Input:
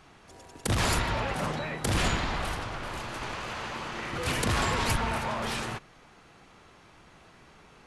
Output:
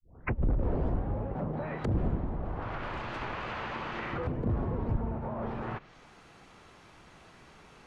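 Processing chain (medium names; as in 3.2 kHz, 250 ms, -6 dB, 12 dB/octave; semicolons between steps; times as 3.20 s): tape start-up on the opening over 1.25 s; low-pass that closes with the level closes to 460 Hz, closed at -26.5 dBFS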